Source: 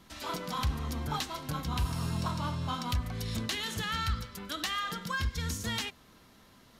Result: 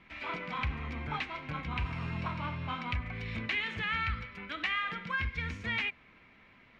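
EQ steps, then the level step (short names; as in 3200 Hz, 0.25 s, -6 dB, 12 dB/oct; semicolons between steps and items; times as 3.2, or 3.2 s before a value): synth low-pass 2300 Hz, resonance Q 6.2; -4.0 dB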